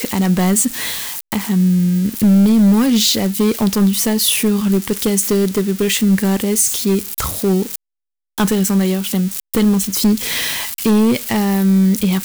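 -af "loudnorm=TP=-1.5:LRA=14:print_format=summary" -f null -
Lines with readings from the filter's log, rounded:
Input Integrated:    -15.4 LUFS
Input True Peak:      -2.9 dBTP
Input LRA:             2.7 LU
Input Threshold:     -25.5 LUFS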